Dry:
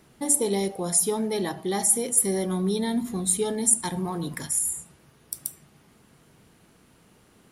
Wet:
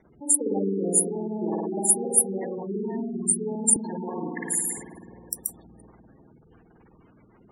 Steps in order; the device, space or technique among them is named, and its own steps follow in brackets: dub delay into a spring reverb (filtered feedback delay 340 ms, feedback 63%, low-pass 4.4 kHz, level -16 dB; spring tank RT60 2 s, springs 51 ms, chirp 30 ms, DRR -5 dB); spectral gate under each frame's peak -15 dB strong; 3.76–4.78 s: steep high-pass 170 Hz; harmonic-percussive split harmonic -12 dB; trim +2.5 dB

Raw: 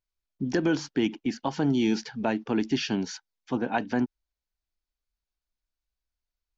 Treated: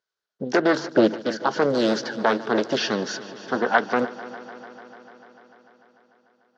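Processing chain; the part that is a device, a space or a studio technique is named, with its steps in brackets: full-range speaker at full volume (loudspeaker Doppler distortion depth 0.58 ms; cabinet simulation 270–6200 Hz, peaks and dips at 280 Hz -8 dB, 440 Hz +7 dB, 1.5 kHz +9 dB, 2.4 kHz -8 dB); 0.79–1.20 s: tilt shelf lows +6 dB, about 1.4 kHz; multi-head delay 148 ms, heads first and second, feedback 72%, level -20 dB; trim +7 dB

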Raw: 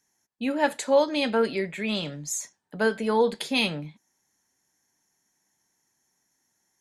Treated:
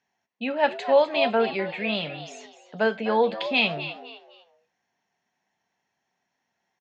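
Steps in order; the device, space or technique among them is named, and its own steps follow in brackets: frequency-shifting delay pedal into a guitar cabinet (frequency-shifting echo 253 ms, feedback 31%, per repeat +110 Hz, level -12.5 dB; cabinet simulation 94–4200 Hz, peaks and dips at 130 Hz -4 dB, 310 Hz -8 dB, 700 Hz +8 dB, 2.7 kHz +6 dB)

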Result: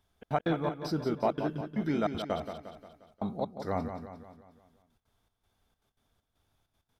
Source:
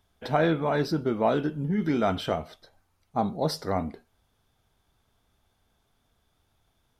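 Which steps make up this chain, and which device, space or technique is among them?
trance gate with a delay (trance gate "xxx.x.xxx..x" 196 bpm -60 dB; feedback delay 177 ms, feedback 50%, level -8.5 dB); trim -4.5 dB

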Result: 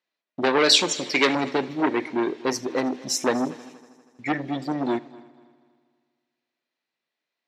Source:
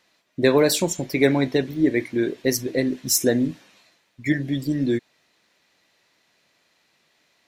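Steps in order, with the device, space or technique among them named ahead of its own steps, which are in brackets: gate with hold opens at -42 dBFS; 0.58–1.35 s: frequency weighting D; public-address speaker with an overloaded transformer (transformer saturation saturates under 2.8 kHz; band-pass 210–5100 Hz); multi-head delay 80 ms, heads first and third, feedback 53%, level -22 dB; trim +1 dB

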